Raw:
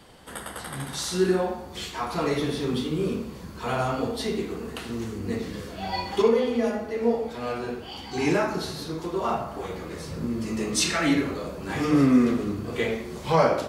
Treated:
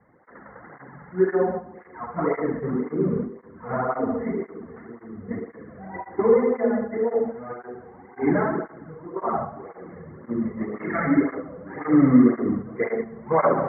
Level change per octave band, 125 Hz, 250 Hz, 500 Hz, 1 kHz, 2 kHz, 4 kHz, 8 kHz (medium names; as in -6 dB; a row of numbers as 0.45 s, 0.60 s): -0.5 dB, +2.5 dB, +2.0 dB, +0.5 dB, -2.0 dB, under -40 dB, under -40 dB